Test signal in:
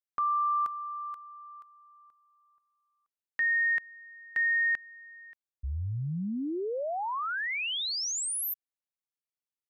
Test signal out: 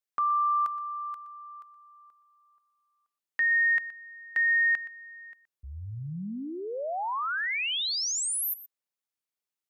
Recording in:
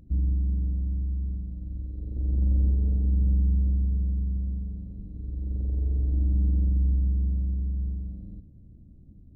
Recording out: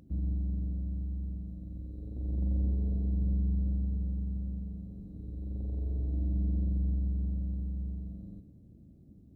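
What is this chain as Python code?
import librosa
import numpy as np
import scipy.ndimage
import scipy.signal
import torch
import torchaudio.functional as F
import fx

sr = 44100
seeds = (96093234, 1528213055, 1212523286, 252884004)

y = fx.highpass(x, sr, hz=220.0, slope=6)
y = fx.dynamic_eq(y, sr, hz=360.0, q=1.1, threshold_db=-52.0, ratio=4.0, max_db=-5)
y = y + 10.0 ** (-16.0 / 20.0) * np.pad(y, (int(121 * sr / 1000.0), 0))[:len(y)]
y = F.gain(torch.from_numpy(y), 2.5).numpy()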